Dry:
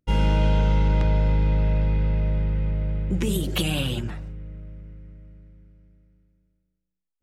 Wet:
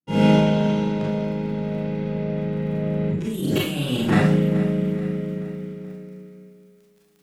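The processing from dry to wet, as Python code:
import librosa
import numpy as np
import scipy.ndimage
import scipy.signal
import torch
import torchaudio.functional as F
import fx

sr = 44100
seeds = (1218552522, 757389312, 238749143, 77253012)

p1 = fx.fade_in_head(x, sr, length_s=1.29)
p2 = scipy.signal.sosfilt(scipy.signal.butter(4, 150.0, 'highpass', fs=sr, output='sos'), p1)
p3 = fx.low_shelf(p2, sr, hz=350.0, db=11.5)
p4 = fx.over_compress(p3, sr, threshold_db=-33.0, ratio=-1.0)
p5 = fx.dmg_crackle(p4, sr, seeds[0], per_s=13.0, level_db=-53.0)
p6 = p5 + fx.echo_feedback(p5, sr, ms=429, feedback_pct=48, wet_db=-15.5, dry=0)
p7 = fx.rev_schroeder(p6, sr, rt60_s=0.45, comb_ms=28, drr_db=-4.5)
y = p7 * 10.0 ** (8.0 / 20.0)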